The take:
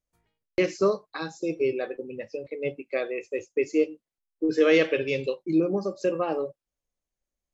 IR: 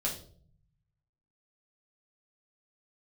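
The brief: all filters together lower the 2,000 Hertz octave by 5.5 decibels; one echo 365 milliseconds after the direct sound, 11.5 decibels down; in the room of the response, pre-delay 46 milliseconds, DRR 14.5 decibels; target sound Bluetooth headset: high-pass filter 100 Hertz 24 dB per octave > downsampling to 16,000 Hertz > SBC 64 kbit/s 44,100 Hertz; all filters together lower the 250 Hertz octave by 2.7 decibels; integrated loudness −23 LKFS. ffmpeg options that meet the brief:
-filter_complex "[0:a]equalizer=frequency=250:width_type=o:gain=-4,equalizer=frequency=2000:width_type=o:gain=-7,aecho=1:1:365:0.266,asplit=2[link_01][link_02];[1:a]atrim=start_sample=2205,adelay=46[link_03];[link_02][link_03]afir=irnorm=-1:irlink=0,volume=-19dB[link_04];[link_01][link_04]amix=inputs=2:normalize=0,highpass=frequency=100:width=0.5412,highpass=frequency=100:width=1.3066,aresample=16000,aresample=44100,volume=5.5dB" -ar 44100 -c:a sbc -b:a 64k

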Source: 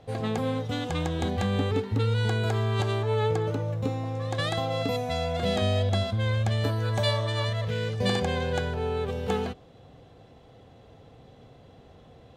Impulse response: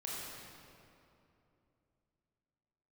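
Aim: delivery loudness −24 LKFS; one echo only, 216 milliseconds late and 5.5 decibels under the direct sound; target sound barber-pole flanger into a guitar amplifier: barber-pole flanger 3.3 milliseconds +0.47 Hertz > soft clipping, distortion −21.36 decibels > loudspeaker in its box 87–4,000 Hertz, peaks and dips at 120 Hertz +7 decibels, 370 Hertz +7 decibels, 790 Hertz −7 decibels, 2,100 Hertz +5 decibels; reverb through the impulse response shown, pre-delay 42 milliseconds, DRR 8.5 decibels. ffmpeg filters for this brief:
-filter_complex "[0:a]aecho=1:1:216:0.531,asplit=2[link_01][link_02];[1:a]atrim=start_sample=2205,adelay=42[link_03];[link_02][link_03]afir=irnorm=-1:irlink=0,volume=-9.5dB[link_04];[link_01][link_04]amix=inputs=2:normalize=0,asplit=2[link_05][link_06];[link_06]adelay=3.3,afreqshift=0.47[link_07];[link_05][link_07]amix=inputs=2:normalize=1,asoftclip=threshold=-18.5dB,highpass=87,equalizer=frequency=120:width_type=q:width=4:gain=7,equalizer=frequency=370:width_type=q:width=4:gain=7,equalizer=frequency=790:width_type=q:width=4:gain=-7,equalizer=frequency=2100:width_type=q:width=4:gain=5,lowpass=frequency=4000:width=0.5412,lowpass=frequency=4000:width=1.3066,volume=5.5dB"

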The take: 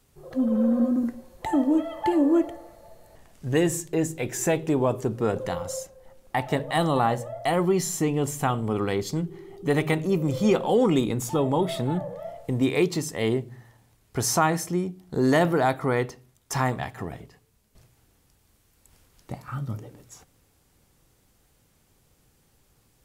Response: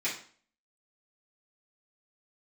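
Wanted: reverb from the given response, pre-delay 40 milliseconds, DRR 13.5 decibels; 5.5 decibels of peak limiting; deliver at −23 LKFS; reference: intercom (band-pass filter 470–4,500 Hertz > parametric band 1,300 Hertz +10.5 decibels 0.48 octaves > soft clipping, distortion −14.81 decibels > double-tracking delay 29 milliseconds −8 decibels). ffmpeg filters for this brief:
-filter_complex "[0:a]alimiter=limit=-15dB:level=0:latency=1,asplit=2[link_01][link_02];[1:a]atrim=start_sample=2205,adelay=40[link_03];[link_02][link_03]afir=irnorm=-1:irlink=0,volume=-21dB[link_04];[link_01][link_04]amix=inputs=2:normalize=0,highpass=470,lowpass=4500,equalizer=frequency=1300:width_type=o:width=0.48:gain=10.5,asoftclip=threshold=-18.5dB,asplit=2[link_05][link_06];[link_06]adelay=29,volume=-8dB[link_07];[link_05][link_07]amix=inputs=2:normalize=0,volume=7.5dB"

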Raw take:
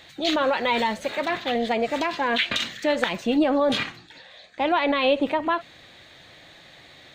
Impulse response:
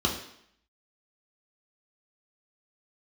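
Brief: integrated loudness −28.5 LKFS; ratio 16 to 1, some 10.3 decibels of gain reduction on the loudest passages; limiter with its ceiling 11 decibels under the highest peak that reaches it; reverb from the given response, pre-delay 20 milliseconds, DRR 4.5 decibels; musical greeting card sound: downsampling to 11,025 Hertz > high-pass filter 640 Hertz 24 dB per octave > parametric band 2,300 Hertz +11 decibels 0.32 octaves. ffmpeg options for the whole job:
-filter_complex "[0:a]acompressor=threshold=-26dB:ratio=16,alimiter=level_in=0.5dB:limit=-24dB:level=0:latency=1,volume=-0.5dB,asplit=2[link_01][link_02];[1:a]atrim=start_sample=2205,adelay=20[link_03];[link_02][link_03]afir=irnorm=-1:irlink=0,volume=-15dB[link_04];[link_01][link_04]amix=inputs=2:normalize=0,aresample=11025,aresample=44100,highpass=frequency=640:width=0.5412,highpass=frequency=640:width=1.3066,equalizer=frequency=2300:width_type=o:width=0.32:gain=11,volume=3.5dB"

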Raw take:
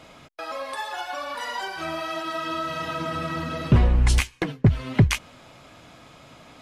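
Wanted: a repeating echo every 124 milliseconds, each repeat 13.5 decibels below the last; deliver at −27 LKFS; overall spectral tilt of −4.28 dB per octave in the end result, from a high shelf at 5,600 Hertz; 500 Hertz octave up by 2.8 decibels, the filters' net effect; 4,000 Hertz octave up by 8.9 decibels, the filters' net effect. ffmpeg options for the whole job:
ffmpeg -i in.wav -af "equalizer=frequency=500:width_type=o:gain=3.5,equalizer=frequency=4000:width_type=o:gain=8.5,highshelf=frequency=5600:gain=8,aecho=1:1:124|248:0.211|0.0444,volume=-4dB" out.wav

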